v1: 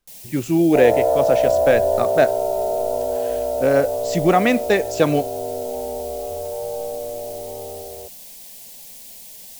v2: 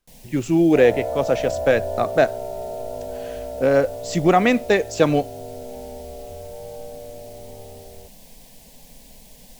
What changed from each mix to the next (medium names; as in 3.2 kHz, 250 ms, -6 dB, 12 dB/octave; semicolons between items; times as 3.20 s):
first sound: add tilt EQ -3 dB/octave; second sound: add high-order bell 610 Hz -9 dB 2.4 oct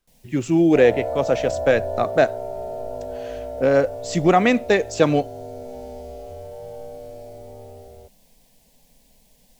first sound -11.0 dB